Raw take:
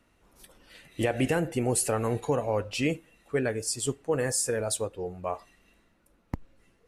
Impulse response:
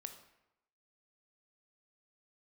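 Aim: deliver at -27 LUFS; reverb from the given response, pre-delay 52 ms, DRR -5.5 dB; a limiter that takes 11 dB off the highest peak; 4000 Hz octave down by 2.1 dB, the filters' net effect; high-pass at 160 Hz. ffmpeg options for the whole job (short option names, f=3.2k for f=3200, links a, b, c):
-filter_complex "[0:a]highpass=160,equalizer=f=4k:t=o:g=-3,alimiter=level_in=0.5dB:limit=-24dB:level=0:latency=1,volume=-0.5dB,asplit=2[a][b];[1:a]atrim=start_sample=2205,adelay=52[c];[b][c]afir=irnorm=-1:irlink=0,volume=10dB[d];[a][d]amix=inputs=2:normalize=0,volume=1.5dB"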